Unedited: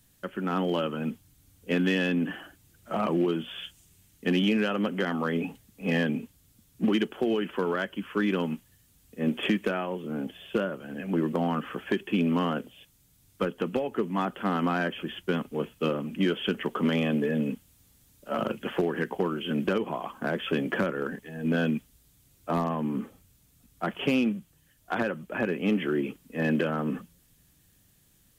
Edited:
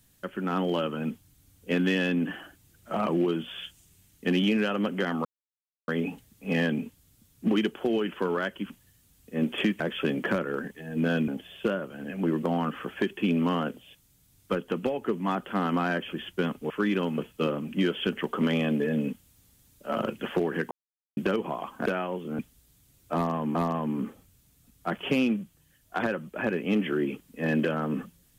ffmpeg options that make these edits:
ffmpeg -i in.wav -filter_complex "[0:a]asplit=12[link_01][link_02][link_03][link_04][link_05][link_06][link_07][link_08][link_09][link_10][link_11][link_12];[link_01]atrim=end=5.25,asetpts=PTS-STARTPTS,afade=type=out:start_time=5.246:duration=0.004:curve=hsin,apad=pad_dur=0.63[link_13];[link_02]atrim=start=5.25:end=8.072,asetpts=PTS-STARTPTS,afade=type=in:duration=0.004:curve=hsin[link_14];[link_03]atrim=start=8.548:end=9.652[link_15];[link_04]atrim=start=20.278:end=21.762[link_16];[link_05]atrim=start=10.178:end=15.602[link_17];[link_06]atrim=start=8.068:end=8.552[link_18];[link_07]atrim=start=15.598:end=19.13,asetpts=PTS-STARTPTS,afade=type=out:start_time=3.528:duration=0.004:curve=hsin[link_19];[link_08]atrim=start=19.13:end=19.59,asetpts=PTS-STARTPTS,volume=0[link_20];[link_09]atrim=start=19.59:end=20.282,asetpts=PTS-STARTPTS,afade=type=in:duration=0.004:curve=hsin[link_21];[link_10]atrim=start=9.648:end=10.182[link_22];[link_11]atrim=start=21.758:end=22.922[link_23];[link_12]atrim=start=22.508[link_24];[link_13][link_14]concat=n=2:v=0:a=1[link_25];[link_25][link_15]acrossfade=duration=0.004:curve1=hsin:curve2=hsin[link_26];[link_26][link_16]acrossfade=duration=0.004:curve1=hsin:curve2=hsin[link_27];[link_27][link_17]acrossfade=duration=0.004:curve1=hsin:curve2=hsin[link_28];[link_28][link_18]acrossfade=duration=0.004:curve1=hsin:curve2=hsin[link_29];[link_19][link_20][link_21]concat=n=3:v=0:a=1[link_30];[link_29][link_30]acrossfade=duration=0.004:curve1=hsin:curve2=hsin[link_31];[link_31][link_22]acrossfade=duration=0.004:curve1=hsin:curve2=hsin[link_32];[link_32][link_23]acrossfade=duration=0.004:curve1=hsin:curve2=hsin[link_33];[link_33][link_24]acrossfade=duration=0.004:curve1=hsin:curve2=hsin" out.wav

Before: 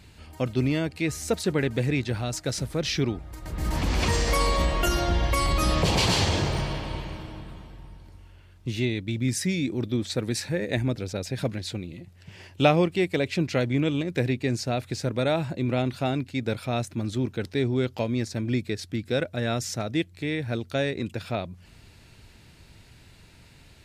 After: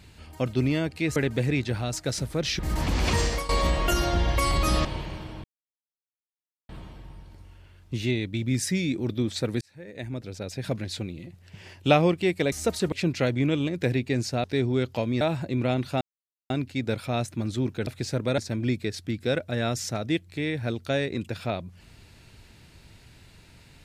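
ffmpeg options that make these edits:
ffmpeg -i in.wav -filter_complex "[0:a]asplit=14[link_01][link_02][link_03][link_04][link_05][link_06][link_07][link_08][link_09][link_10][link_11][link_12][link_13][link_14];[link_01]atrim=end=1.162[link_15];[link_02]atrim=start=1.558:end=2.992[link_16];[link_03]atrim=start=3.538:end=4.44,asetpts=PTS-STARTPTS,afade=type=out:start_time=0.652:duration=0.25:silence=0.11885[link_17];[link_04]atrim=start=4.44:end=5.802,asetpts=PTS-STARTPTS,afade=type=in:duration=0.004:curve=hsin:silence=0.11885[link_18];[link_05]atrim=start=6.838:end=7.43,asetpts=PTS-STARTPTS,afade=type=out:start_time=0.588:duration=0.004:curve=hsin,apad=pad_dur=1.25[link_19];[link_06]atrim=start=7.43:end=10.35,asetpts=PTS-STARTPTS,afade=type=in:duration=0.004:curve=hsin,afade=type=out:start_time=2.916:duration=0.004:curve=hsin[link_20];[link_07]atrim=start=10.35:end=13.262,asetpts=PTS-STARTPTS,afade=type=in:duration=1.29[link_21];[link_08]atrim=start=1.158:end=1.562[link_22];[link_09]atrim=start=13.258:end=14.782[link_23];[link_10]atrim=start=17.458:end=18.232[link_24];[link_11]atrim=start=15.288:end=16.09,asetpts=PTS-STARTPTS,afade=type=out:start_time=0.798:duration=0.004:curve=hsin,apad=pad_dur=0.49[link_25];[link_12]atrim=start=16.09:end=17.462,asetpts=PTS-STARTPTS,afade=type=in:duration=0.004:curve=hsin[link_26];[link_13]atrim=start=14.778:end=15.292[link_27];[link_14]atrim=start=18.228[link_28];[link_15][link_16]acrossfade=duration=0.004:curve1=hsin:curve2=hsin[link_29];[link_17][link_18]concat=n=2:v=0:a=1[link_30];[link_29][link_30]acrossfade=duration=0.004:curve1=hsin:curve2=hsin[link_31];[link_19][link_20][link_21]concat=n=3:v=0:a=1[link_32];[link_31][link_32]acrossfade=duration=0.004:curve1=hsin:curve2=hsin[link_33];[link_33][link_22]acrossfade=duration=0.004:curve1=hsin:curve2=hsin[link_34];[link_34][link_23]acrossfade=duration=0.004:curve1=hsin:curve2=hsin[link_35];[link_35][link_24]acrossfade=duration=0.004:curve1=hsin:curve2=hsin[link_36];[link_25][link_26]concat=n=2:v=0:a=1[link_37];[link_36][link_37]acrossfade=duration=0.004:curve1=hsin:curve2=hsin[link_38];[link_38][link_27]acrossfade=duration=0.004:curve1=hsin:curve2=hsin[link_39];[link_39][link_28]acrossfade=duration=0.004:curve1=hsin:curve2=hsin" out.wav

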